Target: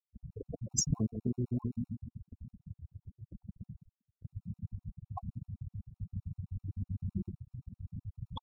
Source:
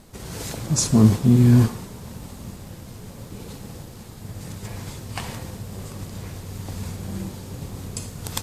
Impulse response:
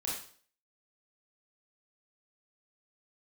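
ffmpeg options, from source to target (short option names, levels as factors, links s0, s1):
-filter_complex "[0:a]lowpass=f=8900:w=0.5412,lowpass=f=8900:w=1.3066,highshelf=f=6200:g=-9.5,asplit=2[s0][s1];[s1]adelay=137,lowpass=f=2100:p=1,volume=0.299,asplit=2[s2][s3];[s3]adelay=137,lowpass=f=2100:p=1,volume=0.41,asplit=2[s4][s5];[s5]adelay=137,lowpass=f=2100:p=1,volume=0.41,asplit=2[s6][s7];[s7]adelay=137,lowpass=f=2100:p=1,volume=0.41[s8];[s0][s2][s4][s6][s8]amix=inputs=5:normalize=0,afftfilt=real='re*gte(hypot(re,im),0.112)':imag='im*gte(hypot(re,im),0.112)':win_size=1024:overlap=0.75,acompressor=threshold=0.0708:ratio=12,agate=range=0.178:threshold=0.00562:ratio=16:detection=peak,aphaser=in_gain=1:out_gain=1:delay=2.9:decay=0.3:speed=1.1:type=triangular,bass=f=250:g=-4,treble=f=4000:g=10,afftfilt=real='re*gt(sin(2*PI*7.8*pts/sr)*(1-2*mod(floor(b*sr/1024/730),2)),0)':imag='im*gt(sin(2*PI*7.8*pts/sr)*(1-2*mod(floor(b*sr/1024/730),2)),0)':win_size=1024:overlap=0.75,volume=0.841"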